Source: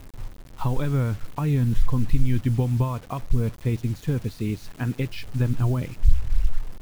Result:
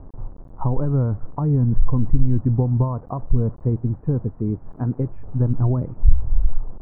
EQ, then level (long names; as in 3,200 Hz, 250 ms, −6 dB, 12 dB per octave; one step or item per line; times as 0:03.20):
inverse Chebyshev low-pass filter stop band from 3,500 Hz, stop band 60 dB
+3.5 dB